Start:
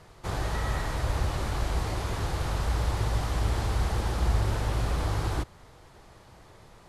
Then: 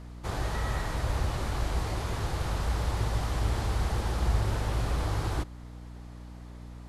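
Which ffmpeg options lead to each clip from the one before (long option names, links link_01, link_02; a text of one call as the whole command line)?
ffmpeg -i in.wav -af "aeval=exprs='val(0)+0.00891*(sin(2*PI*60*n/s)+sin(2*PI*2*60*n/s)/2+sin(2*PI*3*60*n/s)/3+sin(2*PI*4*60*n/s)/4+sin(2*PI*5*60*n/s)/5)':channel_layout=same,volume=-1.5dB" out.wav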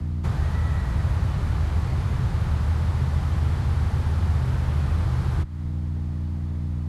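ffmpeg -i in.wav -filter_complex "[0:a]acrossover=split=180|960|2300[link_01][link_02][link_03][link_04];[link_01]acompressor=threshold=-40dB:ratio=4[link_05];[link_02]acompressor=threshold=-49dB:ratio=4[link_06];[link_03]acompressor=threshold=-47dB:ratio=4[link_07];[link_04]acompressor=threshold=-53dB:ratio=4[link_08];[link_05][link_06][link_07][link_08]amix=inputs=4:normalize=0,bass=frequency=250:gain=13,treble=frequency=4000:gain=-4,afreqshift=22,volume=5dB" out.wav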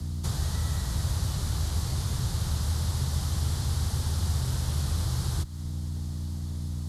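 ffmpeg -i in.wav -af "aexciter=amount=8.2:drive=3.8:freq=3500,volume=-5.5dB" out.wav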